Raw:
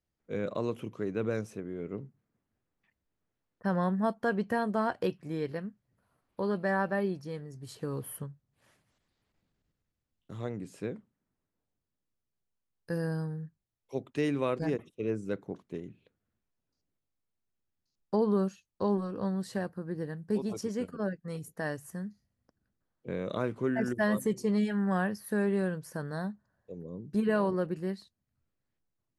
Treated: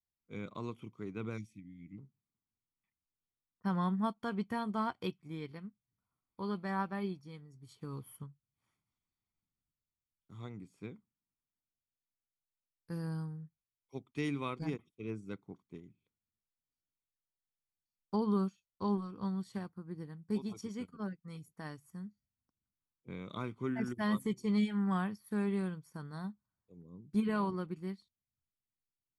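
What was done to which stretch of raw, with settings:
0:01.38–0:01.98: gain on a spectral selection 330–1,800 Hz −29 dB
whole clip: comb filter 0.9 ms, depth 63%; dynamic equaliser 3,200 Hz, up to +6 dB, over −58 dBFS, Q 1.5; expander for the loud parts 1.5 to 1, over −50 dBFS; level −4 dB

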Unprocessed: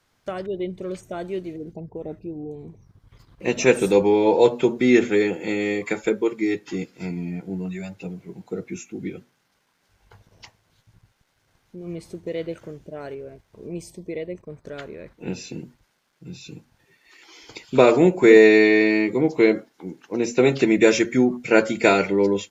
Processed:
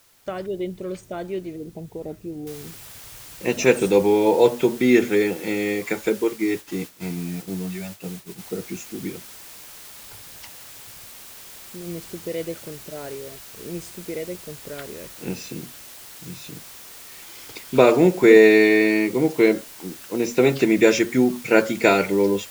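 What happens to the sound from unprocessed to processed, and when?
0:02.47: noise floor change −58 dB −42 dB
0:06.24–0:08.39: downward expander −35 dBFS

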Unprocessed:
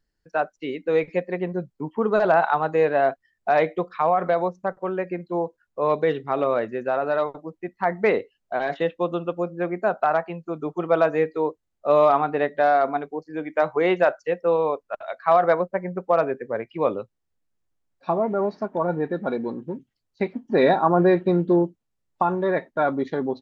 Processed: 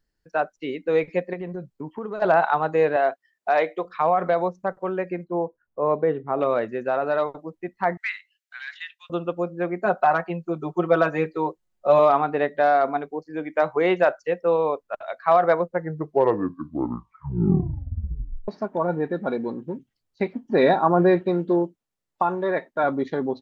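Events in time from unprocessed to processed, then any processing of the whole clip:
0:01.33–0:02.22: downward compressor 5 to 1, threshold −28 dBFS
0:02.96–0:03.85: Bessel high-pass filter 390 Hz
0:05.24–0:06.41: low-pass filter 1,300 Hz
0:07.97–0:09.10: Butterworth high-pass 1,600 Hz
0:09.85–0:11.99: comb filter 5.5 ms, depth 72%
0:15.55: tape stop 2.93 s
0:21.21–0:22.84: low-shelf EQ 180 Hz −10 dB

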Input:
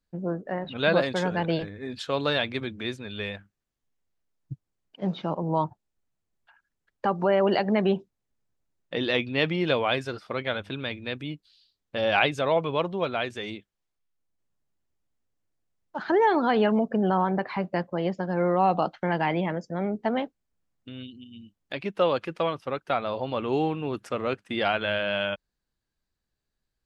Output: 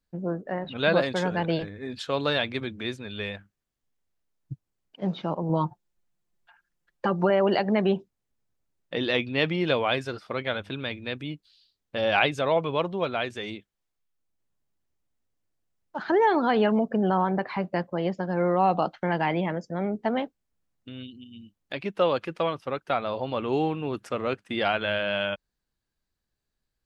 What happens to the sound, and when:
0:05.49–0:07.30: comb filter 5.7 ms

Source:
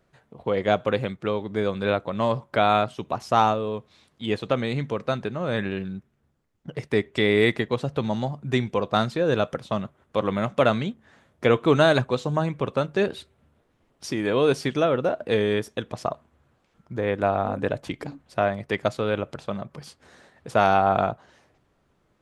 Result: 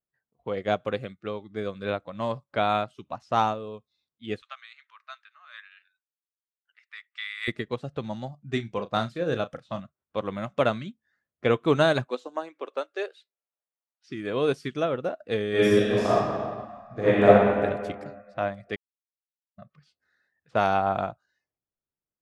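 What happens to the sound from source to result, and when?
0:04.42–0:07.48: high-pass filter 1,000 Hz 24 dB per octave
0:08.51–0:09.80: double-tracking delay 35 ms −9.5 dB
0:12.05–0:14.08: high-pass filter 220 Hz → 730 Hz 24 dB per octave
0:15.50–0:17.26: thrown reverb, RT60 2.8 s, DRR −10 dB
0:18.76–0:19.58: silence
whole clip: low-pass that shuts in the quiet parts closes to 2,700 Hz, open at −20.5 dBFS; noise reduction from a noise print of the clip's start 17 dB; expander for the loud parts 1.5 to 1, over −39 dBFS

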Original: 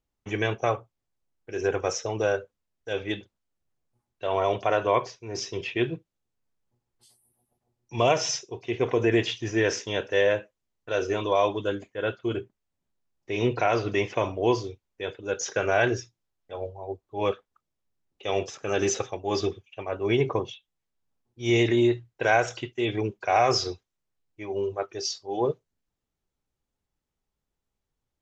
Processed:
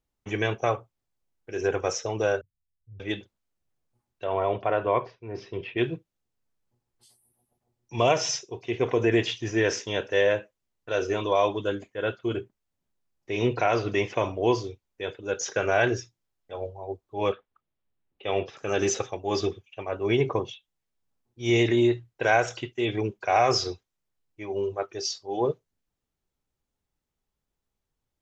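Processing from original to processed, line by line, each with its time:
0:02.41–0:03.00: inverse Chebyshev low-pass filter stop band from 820 Hz, stop band 80 dB
0:04.24–0:05.78: high-frequency loss of the air 370 metres
0:17.32–0:18.57: low-pass filter 3,700 Hz 24 dB per octave

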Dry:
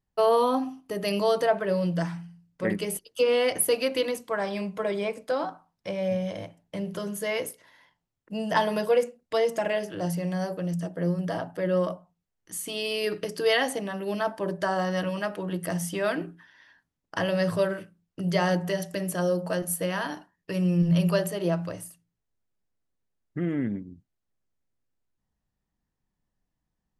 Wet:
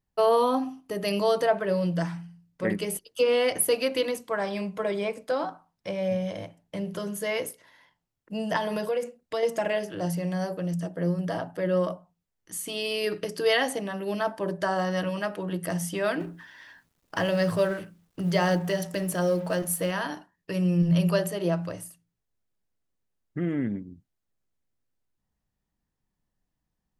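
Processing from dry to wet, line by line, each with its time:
0:08.56–0:09.43: downward compressor 3 to 1, threshold −25 dBFS
0:16.20–0:19.91: mu-law and A-law mismatch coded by mu

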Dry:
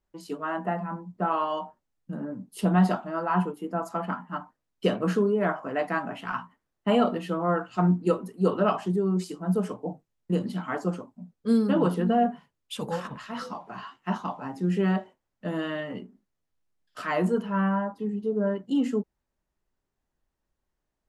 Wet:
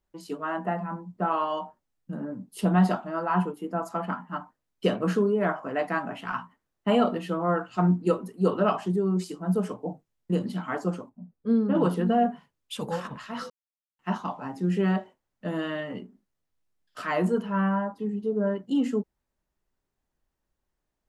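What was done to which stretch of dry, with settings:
0:11.09–0:11.75: head-to-tape spacing loss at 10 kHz 35 dB
0:13.50–0:13.99: silence

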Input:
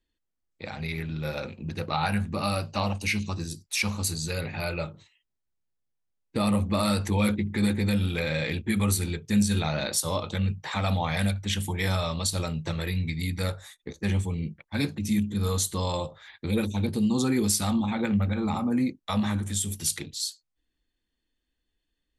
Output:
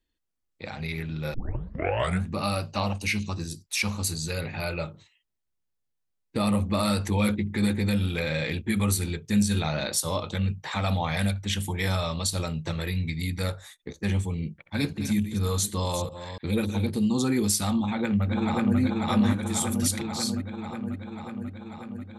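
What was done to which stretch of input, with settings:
0:01.34: tape start 0.90 s
0:14.35–0:17.03: delay that plays each chunk backwards 290 ms, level −10 dB
0:17.77–0:18.79: delay throw 540 ms, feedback 75%, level −1.5 dB

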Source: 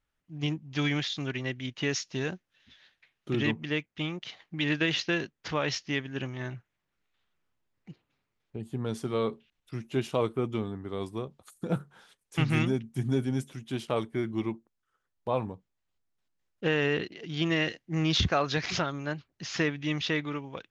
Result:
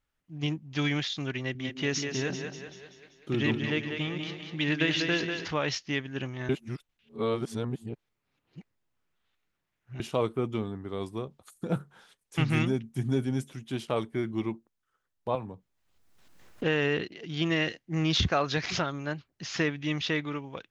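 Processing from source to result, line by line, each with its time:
0:01.40–0:05.47: echo with a time of its own for lows and highs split 320 Hz, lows 145 ms, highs 194 ms, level −5.5 dB
0:06.49–0:10.00: reverse
0:15.35–0:16.64: multiband upward and downward compressor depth 100%

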